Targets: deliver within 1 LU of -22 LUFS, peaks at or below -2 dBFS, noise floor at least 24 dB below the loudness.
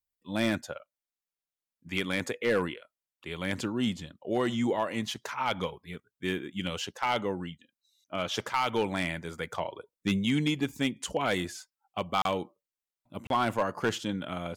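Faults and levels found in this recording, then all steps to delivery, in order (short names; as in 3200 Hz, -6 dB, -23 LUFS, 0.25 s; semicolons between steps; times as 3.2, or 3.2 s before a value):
clipped 0.3%; flat tops at -19.0 dBFS; dropouts 2; longest dropout 32 ms; loudness -31.5 LUFS; peak -19.0 dBFS; loudness target -22.0 LUFS
-> clip repair -19 dBFS; interpolate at 12.22/13.27, 32 ms; gain +9.5 dB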